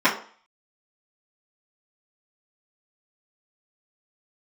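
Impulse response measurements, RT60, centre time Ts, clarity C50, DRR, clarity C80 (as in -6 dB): 0.45 s, 21 ms, 10.0 dB, -13.0 dB, 14.0 dB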